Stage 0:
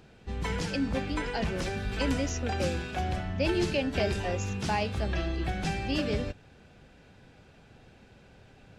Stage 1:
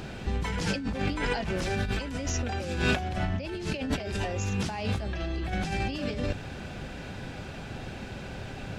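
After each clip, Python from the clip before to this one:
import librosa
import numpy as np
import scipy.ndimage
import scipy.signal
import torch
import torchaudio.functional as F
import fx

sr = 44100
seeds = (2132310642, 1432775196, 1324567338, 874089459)

y = fx.notch(x, sr, hz=460.0, q=12.0)
y = fx.over_compress(y, sr, threshold_db=-39.0, ratio=-1.0)
y = y * 10.0 ** (8.5 / 20.0)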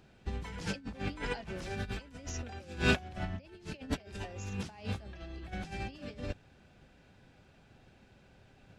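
y = fx.upward_expand(x, sr, threshold_db=-37.0, expansion=2.5)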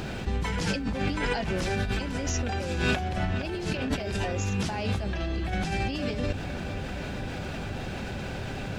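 y = fx.echo_filtered(x, sr, ms=467, feedback_pct=67, hz=3900.0, wet_db=-21.0)
y = fx.env_flatten(y, sr, amount_pct=70)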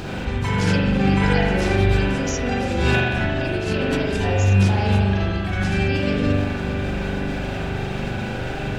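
y = fx.rev_spring(x, sr, rt60_s=1.5, pass_ms=(41,), chirp_ms=55, drr_db=-3.5)
y = y * 10.0 ** (3.0 / 20.0)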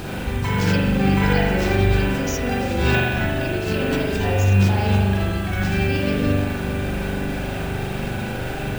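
y = fx.dmg_noise_colour(x, sr, seeds[0], colour='violet', level_db=-40.0)
y = np.repeat(scipy.signal.resample_poly(y, 1, 2), 2)[:len(y)]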